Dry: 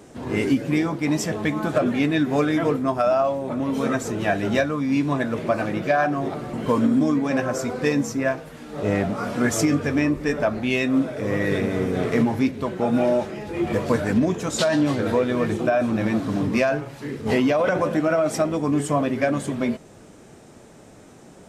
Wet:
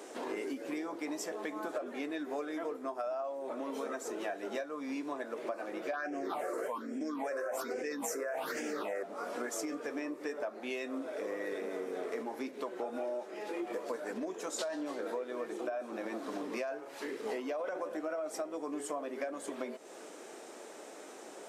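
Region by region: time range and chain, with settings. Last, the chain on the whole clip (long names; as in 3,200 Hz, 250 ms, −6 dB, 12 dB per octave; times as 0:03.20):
0:05.93–0:09.03: all-pass phaser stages 6, 1.2 Hz, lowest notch 210–1,100 Hz + low-shelf EQ 110 Hz −11.5 dB + envelope flattener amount 100%
whole clip: high-pass filter 340 Hz 24 dB per octave; dynamic equaliser 2,900 Hz, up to −6 dB, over −41 dBFS, Q 0.82; downward compressor 5 to 1, threshold −38 dBFS; level +1 dB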